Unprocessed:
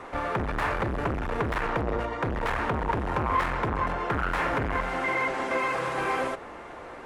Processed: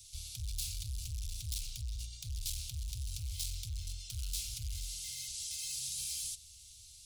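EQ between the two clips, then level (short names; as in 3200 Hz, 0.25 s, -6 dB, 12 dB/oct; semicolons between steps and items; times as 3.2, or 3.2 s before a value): inverse Chebyshev band-stop 230–1900 Hz, stop band 50 dB; tilt +3.5 dB/oct; low shelf 82 Hz +8.5 dB; +3.0 dB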